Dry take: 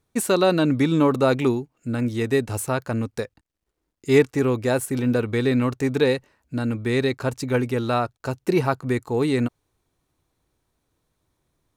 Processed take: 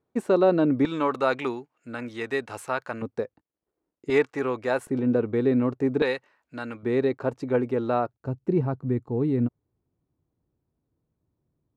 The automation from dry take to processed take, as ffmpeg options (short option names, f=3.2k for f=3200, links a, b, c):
-af "asetnsamples=n=441:p=0,asendcmd='0.85 bandpass f 1400;3.02 bandpass f 450;4.1 bandpass f 1100;4.87 bandpass f 380;6.02 bandpass f 1400;6.83 bandpass f 480;8.14 bandpass f 160',bandpass=f=440:t=q:w=0.66:csg=0"